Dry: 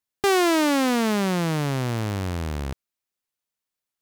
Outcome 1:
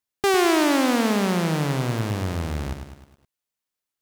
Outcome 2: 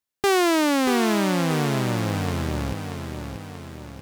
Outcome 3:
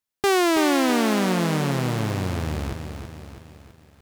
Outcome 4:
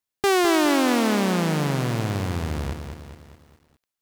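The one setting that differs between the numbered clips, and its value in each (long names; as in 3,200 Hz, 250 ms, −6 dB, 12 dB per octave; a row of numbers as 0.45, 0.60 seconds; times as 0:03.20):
feedback echo at a low word length, delay time: 104, 634, 327, 207 milliseconds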